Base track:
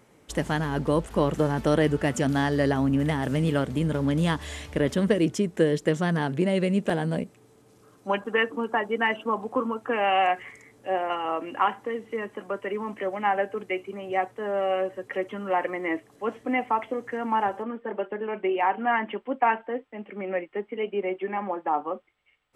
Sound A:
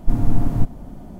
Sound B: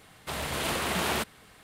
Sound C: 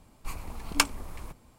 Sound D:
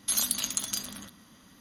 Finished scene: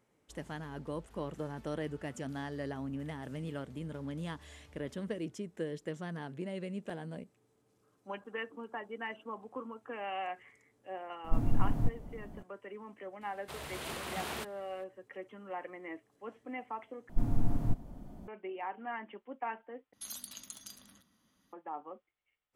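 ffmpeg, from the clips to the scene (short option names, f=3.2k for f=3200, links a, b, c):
-filter_complex "[1:a]asplit=2[a][b];[0:a]volume=-16dB,asplit=3[c][d][e];[c]atrim=end=17.094[f];[b]atrim=end=1.19,asetpts=PTS-STARTPTS,volume=-11.5dB[g];[d]atrim=start=18.276:end=19.934[h];[4:a]atrim=end=1.6,asetpts=PTS-STARTPTS,volume=-17dB[i];[e]atrim=start=21.526[j];[a]atrim=end=1.19,asetpts=PTS-STARTPTS,volume=-11dB,afade=t=in:d=0.004:c=hsin,afade=t=out:st=1.186:d=0.004:c=hsin,adelay=11240[k];[2:a]atrim=end=1.63,asetpts=PTS-STARTPTS,volume=-11dB,afade=t=in:d=0.004:c=hsin,afade=t=out:st=1.626:d=0.004:c=hsin,adelay=13210[l];[f][g]acrossfade=d=0.004:c1=hsin:c2=hsin[m];[m][h]acrossfade=d=0.004:c1=hsin:c2=hsin[n];[n][i]acrossfade=d=0.004:c1=hsin:c2=hsin[o];[o][j]acrossfade=d=0.004:c1=hsin:c2=hsin[p];[p][k][l]amix=inputs=3:normalize=0"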